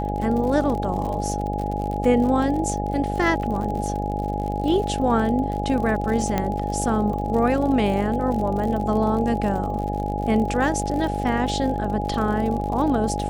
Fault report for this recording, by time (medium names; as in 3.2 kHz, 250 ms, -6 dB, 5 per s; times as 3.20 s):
buzz 50 Hz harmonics 17 -27 dBFS
crackle 62 per s -29 dBFS
whine 830 Hz -28 dBFS
6.38 s: pop -9 dBFS